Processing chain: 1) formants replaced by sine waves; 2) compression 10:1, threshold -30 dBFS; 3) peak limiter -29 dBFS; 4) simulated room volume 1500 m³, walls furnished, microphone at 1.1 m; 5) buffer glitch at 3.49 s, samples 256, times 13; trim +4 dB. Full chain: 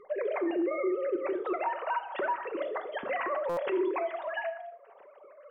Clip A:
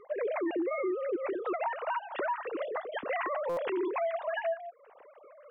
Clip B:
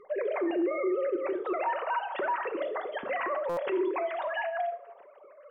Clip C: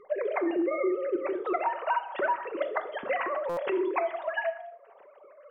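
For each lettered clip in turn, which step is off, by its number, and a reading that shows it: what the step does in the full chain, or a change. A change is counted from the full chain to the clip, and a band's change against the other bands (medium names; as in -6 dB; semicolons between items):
4, crest factor change -2.5 dB; 2, mean gain reduction 5.0 dB; 3, crest factor change +4.5 dB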